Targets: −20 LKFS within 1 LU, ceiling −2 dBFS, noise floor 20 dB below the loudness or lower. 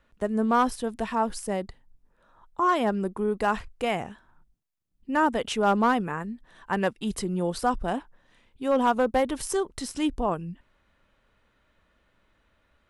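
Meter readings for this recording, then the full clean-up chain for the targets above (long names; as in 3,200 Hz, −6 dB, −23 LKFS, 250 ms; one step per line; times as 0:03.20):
share of clipped samples 0.2%; peaks flattened at −14.5 dBFS; integrated loudness −27.0 LKFS; sample peak −14.5 dBFS; target loudness −20.0 LKFS
→ clipped peaks rebuilt −14.5 dBFS
level +7 dB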